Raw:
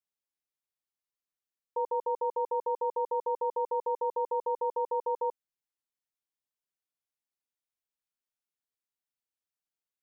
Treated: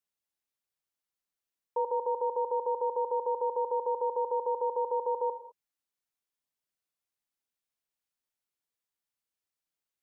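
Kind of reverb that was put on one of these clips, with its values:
reverb whose tail is shaped and stops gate 230 ms flat, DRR 11.5 dB
level +1.5 dB

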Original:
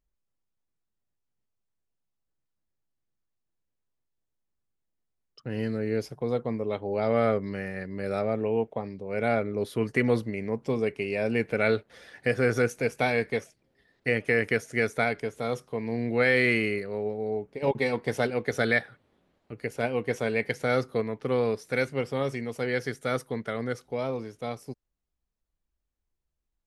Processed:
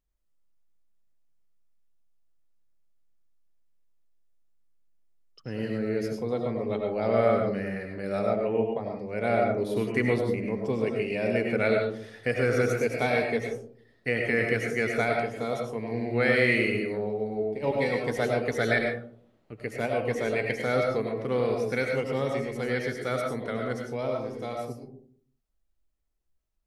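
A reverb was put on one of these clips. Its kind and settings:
comb and all-pass reverb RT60 0.55 s, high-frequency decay 0.3×, pre-delay 60 ms, DRR 1 dB
level −2 dB

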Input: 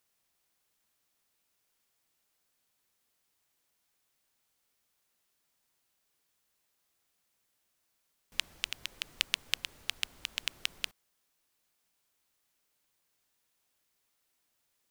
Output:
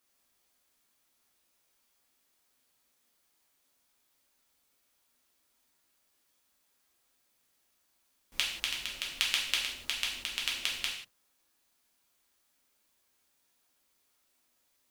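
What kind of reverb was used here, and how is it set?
reverb whose tail is shaped and stops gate 210 ms falling, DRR −4 dB
level −1.5 dB

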